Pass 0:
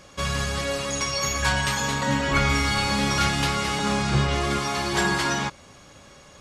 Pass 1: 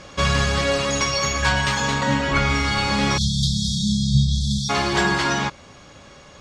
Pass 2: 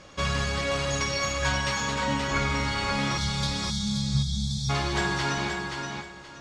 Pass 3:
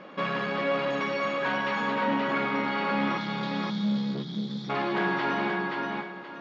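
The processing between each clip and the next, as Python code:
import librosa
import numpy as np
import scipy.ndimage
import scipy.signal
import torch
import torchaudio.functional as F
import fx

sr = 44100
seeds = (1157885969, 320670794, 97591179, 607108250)

y1 = fx.spec_erase(x, sr, start_s=3.18, length_s=1.52, low_hz=230.0, high_hz=3200.0)
y1 = scipy.signal.sosfilt(scipy.signal.butter(2, 6300.0, 'lowpass', fs=sr, output='sos'), y1)
y1 = fx.rider(y1, sr, range_db=10, speed_s=0.5)
y1 = y1 * 10.0 ** (4.5 / 20.0)
y2 = fx.comb_fb(y1, sr, f0_hz=320.0, decay_s=0.72, harmonics='all', damping=0.0, mix_pct=60)
y2 = fx.echo_feedback(y2, sr, ms=526, feedback_pct=25, wet_db=-5)
y3 = 10.0 ** (-25.5 / 20.0) * np.tanh(y2 / 10.0 ** (-25.5 / 20.0))
y3 = fx.brickwall_bandpass(y3, sr, low_hz=160.0, high_hz=7400.0)
y3 = fx.air_absorb(y3, sr, metres=460.0)
y3 = y3 * 10.0 ** (7.0 / 20.0)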